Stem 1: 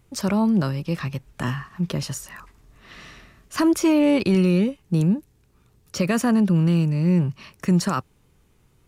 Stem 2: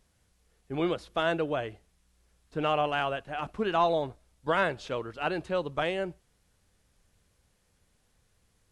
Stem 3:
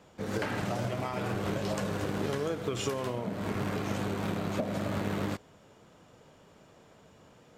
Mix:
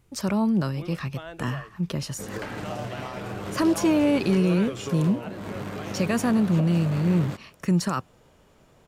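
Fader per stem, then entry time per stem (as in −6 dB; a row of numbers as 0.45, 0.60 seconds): −3.0, −12.5, −1.5 decibels; 0.00, 0.00, 2.00 seconds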